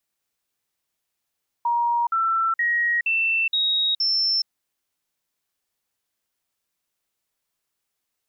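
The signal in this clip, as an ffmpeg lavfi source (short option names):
-f lavfi -i "aevalsrc='0.119*clip(min(mod(t,0.47),0.42-mod(t,0.47))/0.005,0,1)*sin(2*PI*946*pow(2,floor(t/0.47)/2)*mod(t,0.47))':d=2.82:s=44100"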